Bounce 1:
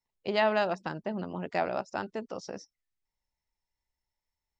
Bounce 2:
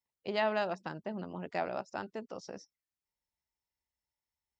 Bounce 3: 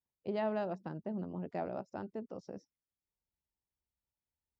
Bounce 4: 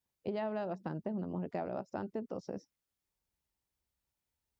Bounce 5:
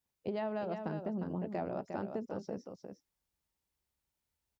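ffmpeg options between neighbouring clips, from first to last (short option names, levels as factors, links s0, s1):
-af "highpass=53,volume=0.562"
-af "tiltshelf=f=870:g=9,volume=0.501"
-af "acompressor=threshold=0.0112:ratio=6,volume=1.88"
-af "aecho=1:1:355:0.447"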